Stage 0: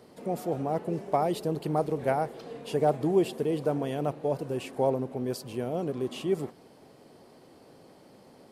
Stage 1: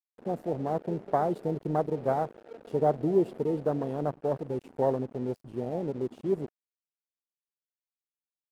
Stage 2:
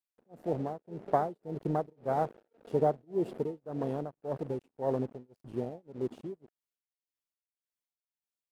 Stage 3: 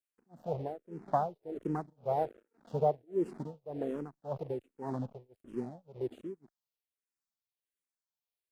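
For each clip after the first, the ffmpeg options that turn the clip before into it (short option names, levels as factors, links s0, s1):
-af "afwtdn=0.0282,aeval=exprs='sgn(val(0))*max(abs(val(0))-0.00299,0)':c=same"
-af "tremolo=f=1.8:d=0.99"
-filter_complex "[0:a]asplit=2[s0][s1];[s1]afreqshift=-1.3[s2];[s0][s2]amix=inputs=2:normalize=1"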